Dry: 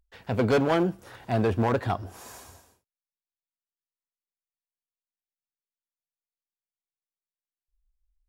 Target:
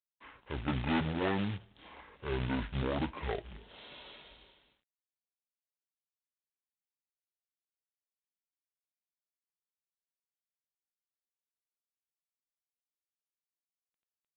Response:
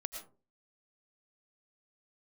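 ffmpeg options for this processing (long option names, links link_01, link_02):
-af "asetrate=25442,aresample=44100,acrusher=bits=4:mode=log:mix=0:aa=0.000001,tiltshelf=frequency=1200:gain=-7,volume=-4dB" -ar 8000 -c:a adpcm_g726 -b:a 32k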